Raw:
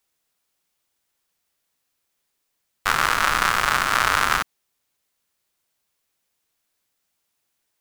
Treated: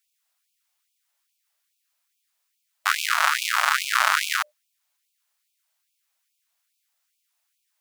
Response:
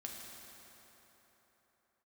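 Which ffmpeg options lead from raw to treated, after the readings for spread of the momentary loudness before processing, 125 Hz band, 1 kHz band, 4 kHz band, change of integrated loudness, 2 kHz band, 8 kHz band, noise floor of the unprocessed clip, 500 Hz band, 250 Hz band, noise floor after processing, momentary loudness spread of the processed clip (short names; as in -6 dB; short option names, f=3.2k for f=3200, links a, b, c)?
6 LU, under -40 dB, -3.0 dB, 0.0 dB, -2.0 dB, -1.5 dB, 0.0 dB, -76 dBFS, -9.5 dB, under -40 dB, -76 dBFS, 7 LU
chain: -af "bandreject=f=60:t=h:w=6,bandreject=f=120:t=h:w=6,bandreject=f=180:t=h:w=6,bandreject=f=240:t=h:w=6,bandreject=f=300:t=h:w=6,bandreject=f=360:t=h:w=6,bandreject=f=420:t=h:w=6,bandreject=f=480:t=h:w=6,bandreject=f=540:t=h:w=6,bandreject=f=600:t=h:w=6,afftfilt=real='re*gte(b*sr/1024,520*pow(2300/520,0.5+0.5*sin(2*PI*2.4*pts/sr)))':imag='im*gte(b*sr/1024,520*pow(2300/520,0.5+0.5*sin(2*PI*2.4*pts/sr)))':win_size=1024:overlap=0.75"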